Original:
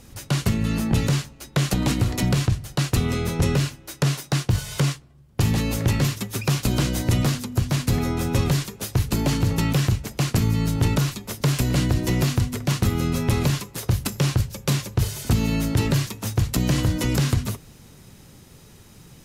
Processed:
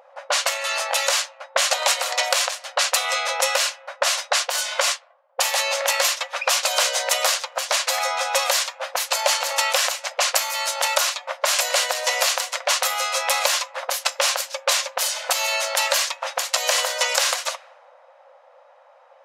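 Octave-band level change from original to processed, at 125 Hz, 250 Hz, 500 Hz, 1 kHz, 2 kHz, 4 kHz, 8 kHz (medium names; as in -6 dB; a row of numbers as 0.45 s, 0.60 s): under -40 dB, under -40 dB, +4.0 dB, +9.5 dB, +9.5 dB, +10.0 dB, +10.5 dB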